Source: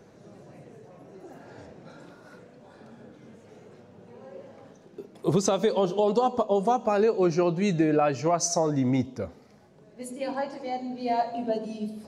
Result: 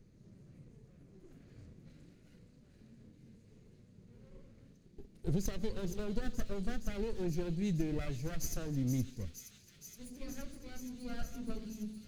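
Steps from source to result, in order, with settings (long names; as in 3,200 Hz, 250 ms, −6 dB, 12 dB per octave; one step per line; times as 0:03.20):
lower of the sound and its delayed copy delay 0.45 ms
guitar amp tone stack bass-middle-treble 10-0-1
on a send: delay with a high-pass on its return 470 ms, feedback 84%, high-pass 3,400 Hz, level −7 dB
on the sum: level +8.5 dB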